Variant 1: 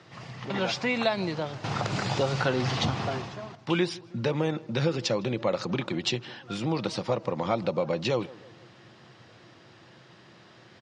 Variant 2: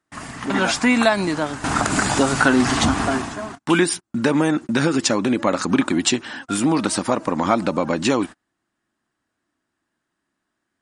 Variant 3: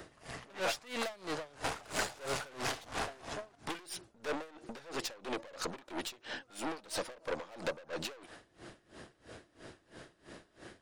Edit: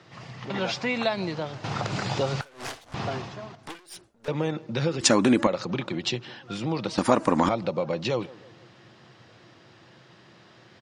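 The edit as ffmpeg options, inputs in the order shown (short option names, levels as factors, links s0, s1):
-filter_complex "[2:a]asplit=2[s0][s1];[1:a]asplit=2[s2][s3];[0:a]asplit=5[s4][s5][s6][s7][s8];[s4]atrim=end=2.412[s9];[s0]atrim=start=2.408:end=2.942[s10];[s5]atrim=start=2.938:end=3.632[s11];[s1]atrim=start=3.628:end=4.282[s12];[s6]atrim=start=4.278:end=5.012[s13];[s2]atrim=start=5.008:end=5.472[s14];[s7]atrim=start=5.468:end=6.982[s15];[s3]atrim=start=6.978:end=7.492[s16];[s8]atrim=start=7.488[s17];[s9][s10]acrossfade=d=0.004:c1=hsin:c2=hsin[s18];[s18][s11]acrossfade=d=0.004:c1=hsin:c2=hsin[s19];[s19][s12]acrossfade=d=0.004:c1=hsin:c2=hsin[s20];[s20][s13]acrossfade=d=0.004:c1=hsin:c2=hsin[s21];[s21][s14]acrossfade=d=0.004:c1=hsin:c2=hsin[s22];[s22][s15]acrossfade=d=0.004:c1=hsin:c2=hsin[s23];[s23][s16]acrossfade=d=0.004:c1=hsin:c2=hsin[s24];[s24][s17]acrossfade=d=0.004:c1=hsin:c2=hsin"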